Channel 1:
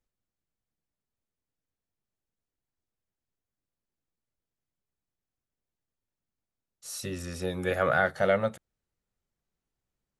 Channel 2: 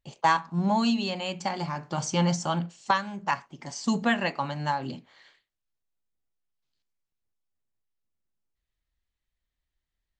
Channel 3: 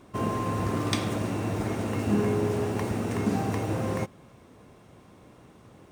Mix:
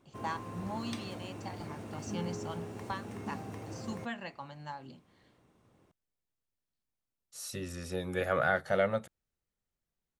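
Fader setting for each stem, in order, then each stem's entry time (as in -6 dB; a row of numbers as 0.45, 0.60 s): -4.0, -15.0, -14.5 dB; 0.50, 0.00, 0.00 s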